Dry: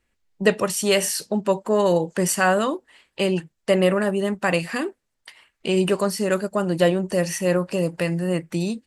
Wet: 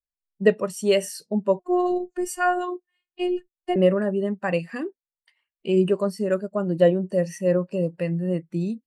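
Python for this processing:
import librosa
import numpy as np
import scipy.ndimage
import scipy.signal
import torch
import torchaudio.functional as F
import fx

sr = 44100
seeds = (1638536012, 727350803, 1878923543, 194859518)

y = fx.robotise(x, sr, hz=358.0, at=(1.59, 3.76))
y = fx.spectral_expand(y, sr, expansion=1.5)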